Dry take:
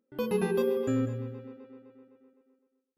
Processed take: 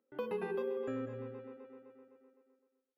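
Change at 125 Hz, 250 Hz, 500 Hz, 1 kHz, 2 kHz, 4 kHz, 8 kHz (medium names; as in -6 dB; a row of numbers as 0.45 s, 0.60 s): -15.0 dB, -12.0 dB, -8.0 dB, -5.5 dB, -7.0 dB, under -10 dB, under -20 dB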